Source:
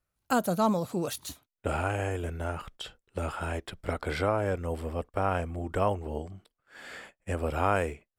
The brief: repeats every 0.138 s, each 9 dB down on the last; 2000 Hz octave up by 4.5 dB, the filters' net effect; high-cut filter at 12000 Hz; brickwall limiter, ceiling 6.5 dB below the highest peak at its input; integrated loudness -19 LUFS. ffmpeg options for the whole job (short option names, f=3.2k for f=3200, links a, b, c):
-af "lowpass=12k,equalizer=f=2k:t=o:g=6.5,alimiter=limit=-16dB:level=0:latency=1,aecho=1:1:138|276|414|552:0.355|0.124|0.0435|0.0152,volume=12.5dB"